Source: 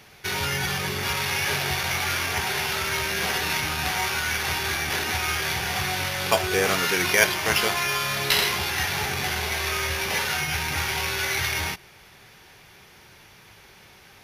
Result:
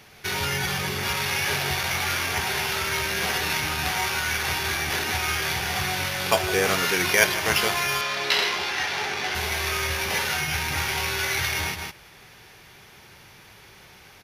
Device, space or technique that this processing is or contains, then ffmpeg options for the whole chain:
ducked delay: -filter_complex "[0:a]asplit=3[a][b][c];[b]adelay=156,volume=-4.5dB[d];[c]apad=whole_len=634639[e];[d][e]sidechaincompress=threshold=-37dB:ratio=8:attack=26:release=103[f];[a][f]amix=inputs=2:normalize=0,asettb=1/sr,asplit=3[g][h][i];[g]atrim=end=8.014[j];[h]atrim=start=8.01:end=9.35,asetpts=PTS-STARTPTS,afade=t=in:d=0.004:c=qsin,afade=t=out:st=1.336:d=0.004:c=qsin,acrossover=split=230 6600:gain=0.178 1 0.178[k][l][m];[k][l][m]amix=inputs=3:normalize=0[n];[i]atrim=start=9.346[o];[j][n]acrossfade=d=0.004:c1=hsin:c2=qsin[p];[p][o]acrossfade=d=0.004:c1=qsin:c2=hsin"

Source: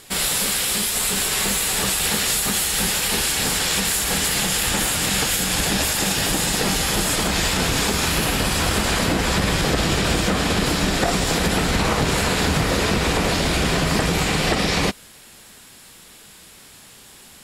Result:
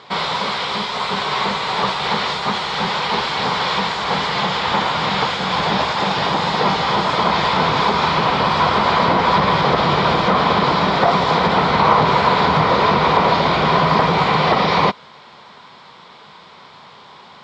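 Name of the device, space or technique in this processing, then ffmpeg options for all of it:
overdrive pedal into a guitar cabinet: -filter_complex "[0:a]asettb=1/sr,asplit=3[a][b][c];[a]atrim=end=4.364[d];[b]atrim=start=4.36:end=5.2,asetpts=PTS-STARTPTS,afade=t=in:d=0.004:c=qsin,afade=t=out:st=0.836:d=0.004:c=qsin,acrossover=split=9500[e][f];[f]acompressor=threshold=-39dB:ratio=4:attack=1:release=60[g];[e][g]amix=inputs=2:normalize=0[h];[c]atrim=start=5.196[i];[d][h]acrossfade=d=0.004:c1=hsin:c2=qsin[j];[j][i]acrossfade=d=0.004:c1=qsin:c2=hsin,asplit=2[k][l];[l]highpass=f=720:p=1,volume=12dB,asoftclip=type=tanh:threshold=-6dB[m];[k][m]amix=inputs=2:normalize=0,lowpass=f=2.3k:p=1,volume=-6dB,highpass=100,equalizer=f=150:t=q:w=4:g=5,equalizer=f=300:t=q:w=4:g=-7,equalizer=f=1k:t=q:w=4:g=9,equalizer=f=1.7k:t=q:w=4:g=-8,equalizer=f=2.7k:t=q:w=4:g=-9,lowpass=f=4.2k:w=0.5412,lowpass=f=4.2k:w=1.3066,volume=4dB"

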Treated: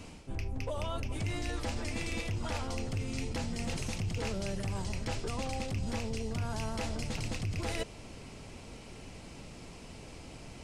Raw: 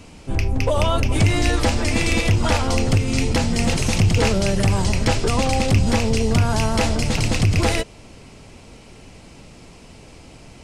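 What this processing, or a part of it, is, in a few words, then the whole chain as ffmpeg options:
compression on the reversed sound: -af "areverse,acompressor=threshold=-29dB:ratio=5,areverse,volume=-4.5dB"

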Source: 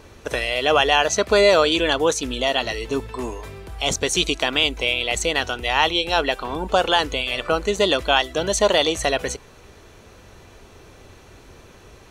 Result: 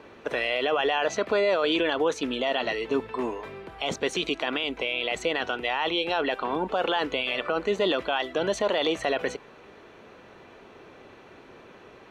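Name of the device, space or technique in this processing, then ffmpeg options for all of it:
DJ mixer with the lows and highs turned down: -filter_complex "[0:a]acrossover=split=160 3500:gain=0.1 1 0.112[a][b][c];[a][b][c]amix=inputs=3:normalize=0,alimiter=limit=-16dB:level=0:latency=1:release=26"

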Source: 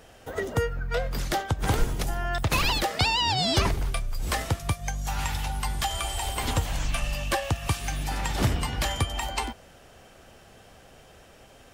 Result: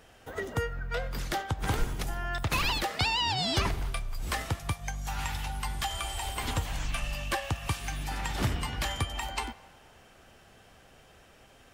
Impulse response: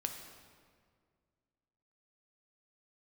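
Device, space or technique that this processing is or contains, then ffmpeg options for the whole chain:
filtered reverb send: -filter_complex "[0:a]asplit=2[a][b];[b]highpass=f=540:w=0.5412,highpass=f=540:w=1.3066,lowpass=4k[c];[1:a]atrim=start_sample=2205[d];[c][d]afir=irnorm=-1:irlink=0,volume=-9.5dB[e];[a][e]amix=inputs=2:normalize=0,volume=-5dB"

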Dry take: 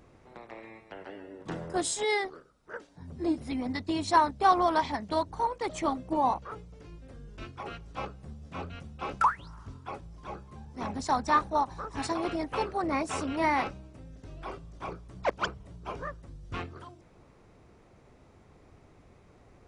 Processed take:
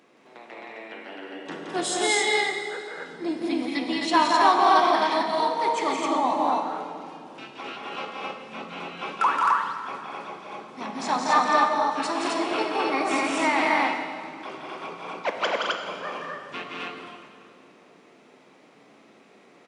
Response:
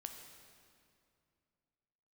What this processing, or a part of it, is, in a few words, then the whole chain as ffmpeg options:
stadium PA: -filter_complex "[0:a]highpass=f=210:w=0.5412,highpass=f=210:w=1.3066,equalizer=f=2.9k:t=o:w=1.5:g=7.5,aecho=1:1:172|212.8|262.4:0.631|0.501|0.891[a];[1:a]atrim=start_sample=2205[b];[a][b]afir=irnorm=-1:irlink=0,volume=5dB"

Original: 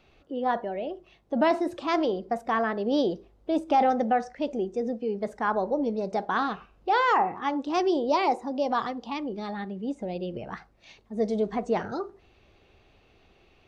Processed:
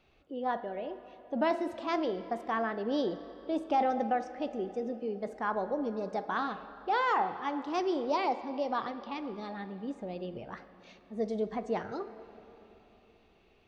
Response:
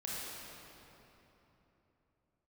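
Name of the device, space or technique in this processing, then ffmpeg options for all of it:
filtered reverb send: -filter_complex "[0:a]asplit=2[a][b];[b]highpass=f=350:p=1,lowpass=5.1k[c];[1:a]atrim=start_sample=2205[d];[c][d]afir=irnorm=-1:irlink=0,volume=-11.5dB[e];[a][e]amix=inputs=2:normalize=0,asettb=1/sr,asplit=3[f][g][h];[f]atrim=end=8.294[i];[g]atrim=start=8.29:end=9.18,asetpts=PTS-STARTPTS,afade=t=in:d=0.004:c=qsin,afade=t=out:st=0.886:d=0.004:c=qsin,lowpass=f=5.9k:w=0.5412,lowpass=f=5.9k:w=1.3066[j];[h]atrim=start=9.176[k];[i][j]acrossfade=d=0.004:c1=hsin:c2=qsin[l];[l][k]acrossfade=d=0.004:c1=qsin:c2=hsin,volume=-7dB"

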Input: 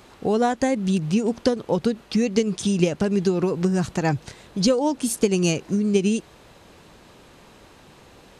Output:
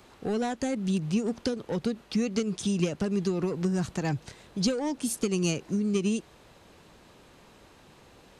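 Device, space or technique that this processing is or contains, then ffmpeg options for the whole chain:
one-band saturation: -filter_complex "[0:a]acrossover=split=320|2000[a][b][c];[b]asoftclip=type=tanh:threshold=-24.5dB[d];[a][d][c]amix=inputs=3:normalize=0,volume=-5.5dB"

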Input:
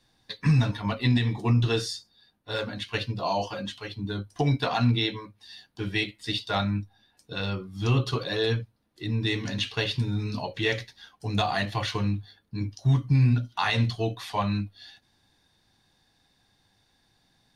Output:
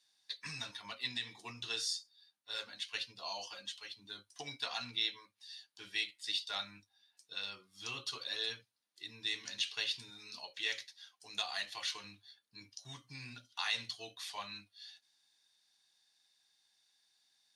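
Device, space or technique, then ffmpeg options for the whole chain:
piezo pickup straight into a mixer: -filter_complex "[0:a]lowpass=7.8k,aderivative,asettb=1/sr,asplit=3[a][b][c];[a]atrim=end=10.104[d];[b]atrim=start=10.1:end=12.04,asetpts=PTS-STARTPTS,afade=t=in:d=0.004:c=qsin,afade=t=out:st=1.936:d=0.004:c=qsin,highpass=f=220:p=1[e];[c]atrim=start=12.036[f];[d][e]acrossfade=d=0.004:c1=hsin:c2=qsin[g];[g][f]acrossfade=d=0.004:c1=qsin:c2=hsin,volume=1dB"

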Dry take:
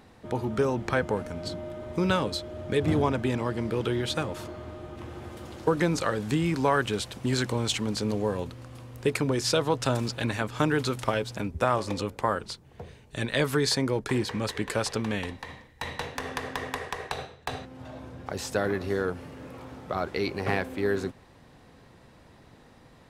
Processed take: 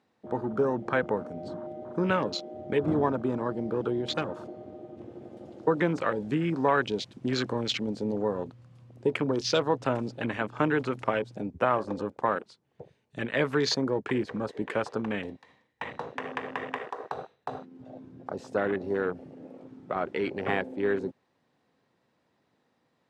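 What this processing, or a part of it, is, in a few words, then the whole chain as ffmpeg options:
over-cleaned archive recording: -af "highpass=170,lowpass=7.7k,afwtdn=0.0178"

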